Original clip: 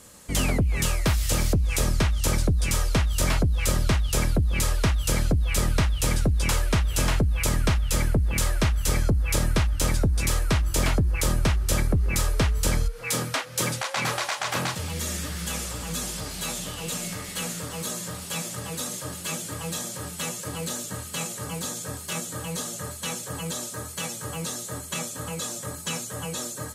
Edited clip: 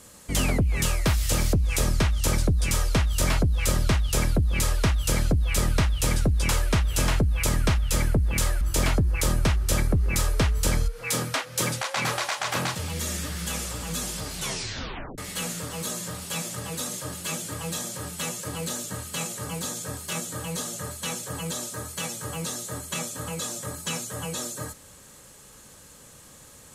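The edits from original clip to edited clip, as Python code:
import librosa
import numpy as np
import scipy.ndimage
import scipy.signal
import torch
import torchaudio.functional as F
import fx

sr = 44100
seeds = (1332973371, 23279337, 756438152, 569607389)

y = fx.edit(x, sr, fx.cut(start_s=8.61, length_s=2.0),
    fx.tape_stop(start_s=16.35, length_s=0.83), tone=tone)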